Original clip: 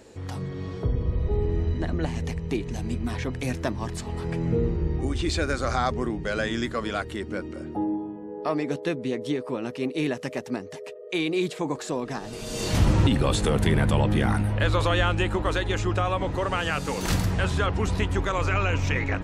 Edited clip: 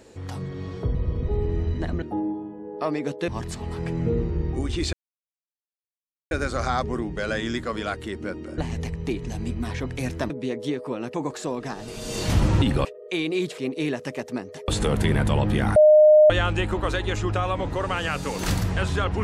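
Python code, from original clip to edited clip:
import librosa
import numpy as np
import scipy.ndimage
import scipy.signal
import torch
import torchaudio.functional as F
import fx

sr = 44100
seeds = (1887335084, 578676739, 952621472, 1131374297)

y = fx.edit(x, sr, fx.reverse_span(start_s=0.95, length_s=0.28),
    fx.swap(start_s=2.02, length_s=1.72, other_s=7.66, other_length_s=1.26),
    fx.insert_silence(at_s=5.39, length_s=1.38),
    fx.swap(start_s=9.76, length_s=1.1, other_s=11.59, other_length_s=1.71),
    fx.bleep(start_s=14.38, length_s=0.54, hz=611.0, db=-9.5), tone=tone)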